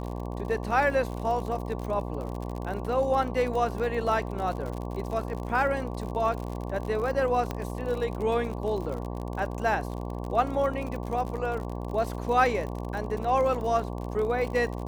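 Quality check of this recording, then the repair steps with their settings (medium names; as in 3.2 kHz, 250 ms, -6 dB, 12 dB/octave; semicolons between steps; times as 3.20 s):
buzz 60 Hz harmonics 19 -34 dBFS
crackle 52 per s -33 dBFS
7.51 s: pop -17 dBFS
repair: de-click; de-hum 60 Hz, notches 19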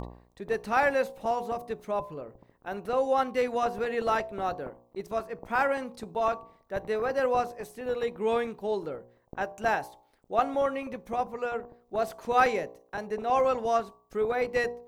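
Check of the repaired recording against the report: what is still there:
nothing left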